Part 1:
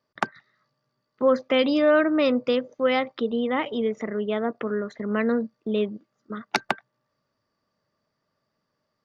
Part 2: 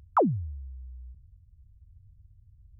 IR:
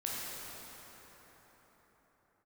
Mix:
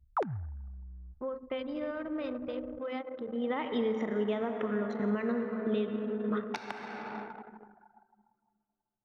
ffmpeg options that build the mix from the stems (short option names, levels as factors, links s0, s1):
-filter_complex "[0:a]equalizer=f=900:t=o:w=0.3:g=4.5,acompressor=threshold=0.0794:ratio=4,volume=0.708,afade=t=in:st=3.26:d=0.59:silence=0.237137,asplit=3[s0][s1][s2];[s1]volume=0.631[s3];[1:a]volume=0.794[s4];[s2]apad=whole_len=123346[s5];[s4][s5]sidechaincompress=threshold=0.00631:ratio=8:attack=6.8:release=114[s6];[2:a]atrim=start_sample=2205[s7];[s3][s7]afir=irnorm=-1:irlink=0[s8];[s0][s6][s8]amix=inputs=3:normalize=0,anlmdn=0.631,alimiter=limit=0.0794:level=0:latency=1:release=463"